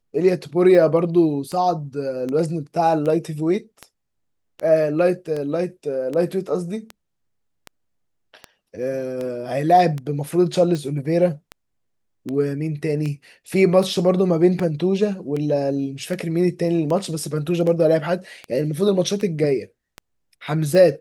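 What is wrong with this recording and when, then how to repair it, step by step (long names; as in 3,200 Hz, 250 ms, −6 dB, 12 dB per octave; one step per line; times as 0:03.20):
scratch tick 78 rpm −16 dBFS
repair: click removal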